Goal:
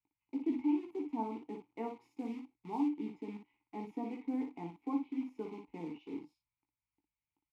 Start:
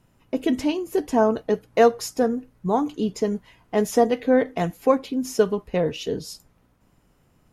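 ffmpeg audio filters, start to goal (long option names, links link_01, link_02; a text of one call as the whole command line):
ffmpeg -i in.wav -filter_complex "[0:a]equalizer=frequency=6200:width_type=o:width=1.9:gain=-13.5,acrossover=split=100|1400|5600[link_01][link_02][link_03][link_04];[link_02]acrusher=bits=6:dc=4:mix=0:aa=0.000001[link_05];[link_01][link_05][link_03][link_04]amix=inputs=4:normalize=0,asplit=3[link_06][link_07][link_08];[link_06]bandpass=frequency=300:width_type=q:width=8,volume=0dB[link_09];[link_07]bandpass=frequency=870:width_type=q:width=8,volume=-6dB[link_10];[link_08]bandpass=frequency=2240:width_type=q:width=8,volume=-9dB[link_11];[link_09][link_10][link_11]amix=inputs=3:normalize=0,aecho=1:1:18|58:0.473|0.501,asplit=3[link_12][link_13][link_14];[link_12]afade=type=out:start_time=2.1:duration=0.02[link_15];[link_13]adynamicequalizer=threshold=0.00224:dfrequency=3300:dqfactor=0.7:tfrequency=3300:tqfactor=0.7:attack=5:release=100:ratio=0.375:range=4:mode=boostabove:tftype=highshelf,afade=type=in:start_time=2.1:duration=0.02,afade=type=out:start_time=2.88:duration=0.02[link_16];[link_14]afade=type=in:start_time=2.88:duration=0.02[link_17];[link_15][link_16][link_17]amix=inputs=3:normalize=0,volume=-6.5dB" out.wav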